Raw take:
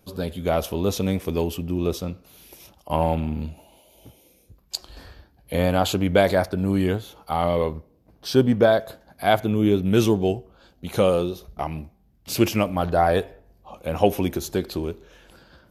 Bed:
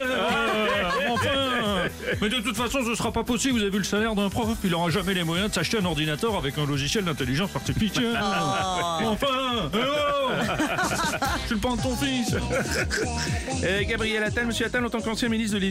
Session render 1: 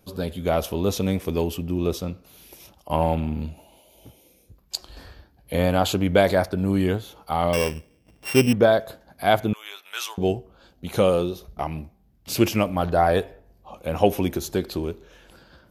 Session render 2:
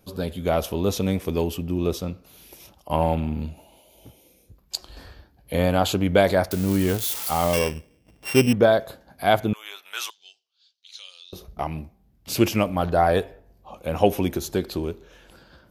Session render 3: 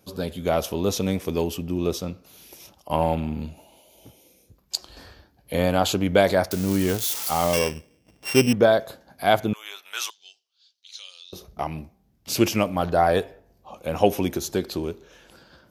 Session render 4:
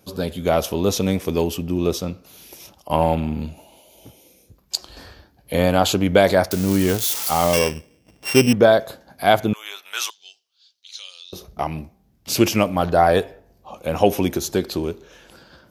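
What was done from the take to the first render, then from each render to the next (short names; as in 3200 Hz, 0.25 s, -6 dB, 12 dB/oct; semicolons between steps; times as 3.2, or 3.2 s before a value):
7.53–8.53 sample sorter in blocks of 16 samples; 9.53–10.18 HPF 1000 Hz 24 dB/oct
6.51–7.59 switching spikes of -19.5 dBFS; 8.79–9.25 doubler 31 ms -12 dB; 10.1–11.33 Butterworth band-pass 4600 Hz, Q 1.7
HPF 99 Hz 6 dB/oct; bell 5900 Hz +4 dB 0.72 oct
gain +4 dB; limiter -2 dBFS, peak gain reduction 2 dB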